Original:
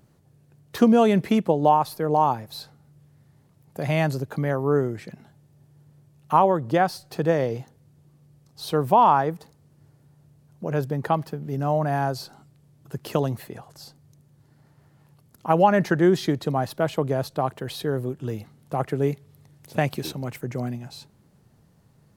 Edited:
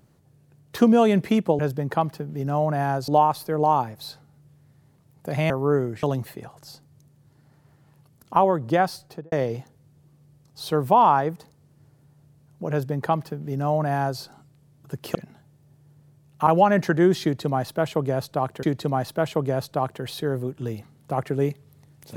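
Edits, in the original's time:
4.01–4.52 s: delete
5.05–6.37 s: swap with 13.16–15.49 s
7.00–7.33 s: studio fade out
10.72–12.21 s: copy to 1.59 s
16.25–17.65 s: loop, 2 plays

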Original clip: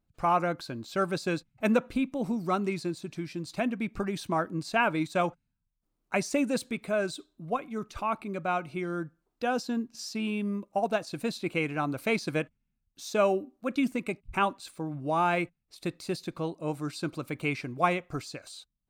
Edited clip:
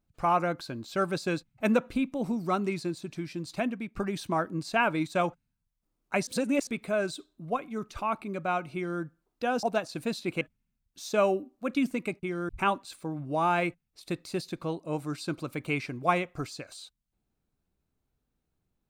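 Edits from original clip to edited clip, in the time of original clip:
3.51–3.96 s: fade out equal-power, to -11.5 dB
6.27–6.67 s: reverse
8.75–9.01 s: copy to 14.24 s
9.63–10.81 s: delete
11.59–12.42 s: delete

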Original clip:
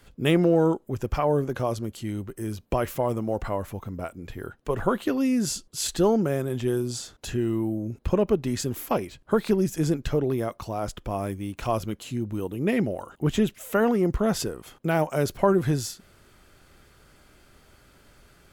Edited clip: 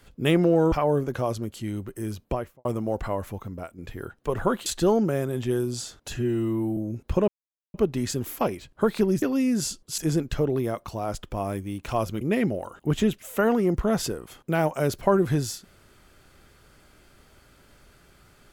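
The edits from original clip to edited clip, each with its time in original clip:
0.72–1.13 s: delete
2.60–3.06 s: studio fade out
3.80–4.19 s: fade out, to -6.5 dB
5.07–5.83 s: move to 9.72 s
7.31–7.73 s: stretch 1.5×
8.24 s: insert silence 0.46 s
11.95–12.57 s: delete

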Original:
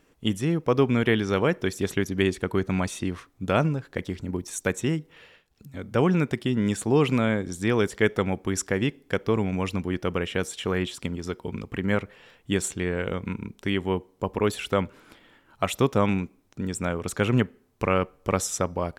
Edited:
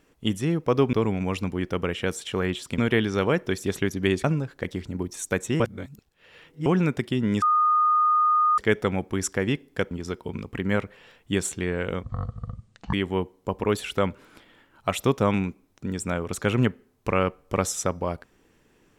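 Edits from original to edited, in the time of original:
2.39–3.58 s: delete
4.94–6.00 s: reverse
6.76–7.92 s: bleep 1.23 kHz -17 dBFS
9.25–11.10 s: move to 0.93 s
13.22–13.68 s: speed 51%

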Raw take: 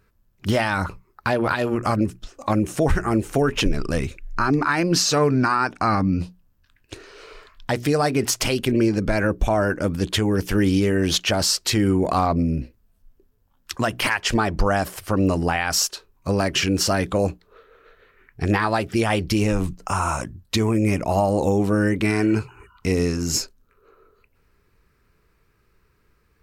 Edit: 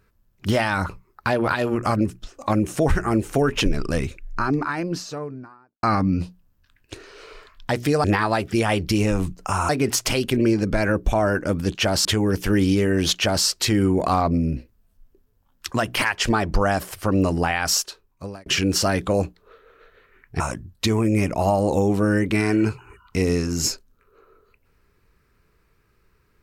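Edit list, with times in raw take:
3.95–5.83 s: studio fade out
11.21–11.51 s: copy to 10.10 s
15.79–16.51 s: fade out linear
18.45–20.10 s: move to 8.04 s

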